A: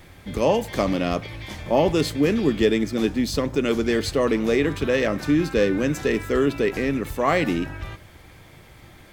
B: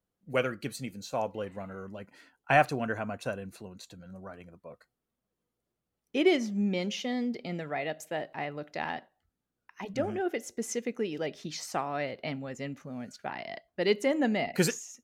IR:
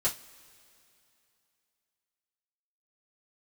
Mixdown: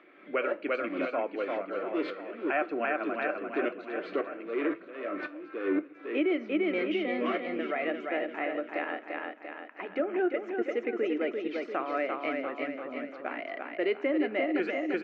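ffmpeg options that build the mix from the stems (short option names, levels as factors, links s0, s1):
-filter_complex "[0:a]asoftclip=type=tanh:threshold=0.126,aeval=exprs='val(0)*pow(10,-32*if(lt(mod(-1.9*n/s,1),2*abs(-1.9)/1000),1-mod(-1.9*n/s,1)/(2*abs(-1.9)/1000),(mod(-1.9*n/s,1)-2*abs(-1.9)/1000)/(1-2*abs(-1.9)/1000))/20)':c=same,volume=0.708,asplit=2[s0][s1];[s1]volume=0.266[s2];[1:a]volume=1,asplit=4[s3][s4][s5][s6];[s4]volume=0.106[s7];[s5]volume=0.631[s8];[s6]apad=whole_len=402532[s9];[s0][s9]sidechaincompress=threshold=0.0126:ratio=8:attack=16:release=190[s10];[2:a]atrim=start_sample=2205[s11];[s2][s7]amix=inputs=2:normalize=0[s12];[s12][s11]afir=irnorm=-1:irlink=0[s13];[s8]aecho=0:1:344|688|1032|1376|1720|2064|2408|2752:1|0.52|0.27|0.141|0.0731|0.038|0.0198|0.0103[s14];[s10][s3][s13][s14]amix=inputs=4:normalize=0,acompressor=mode=upward:threshold=0.00891:ratio=2.5,highpass=f=300:w=0.5412,highpass=f=300:w=1.3066,equalizer=f=310:t=q:w=4:g=10,equalizer=f=580:t=q:w=4:g=3,equalizer=f=870:t=q:w=4:g=-7,equalizer=f=1300:t=q:w=4:g=7,equalizer=f=2300:t=q:w=4:g=5,lowpass=f=2700:w=0.5412,lowpass=f=2700:w=1.3066,alimiter=limit=0.106:level=0:latency=1:release=200"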